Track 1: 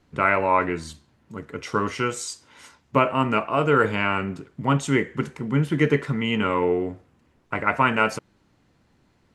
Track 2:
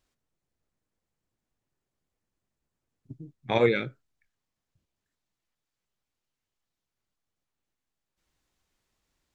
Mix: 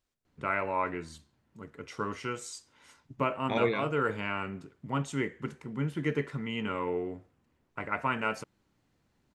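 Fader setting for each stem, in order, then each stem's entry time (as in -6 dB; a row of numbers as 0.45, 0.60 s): -10.5, -6.0 dB; 0.25, 0.00 s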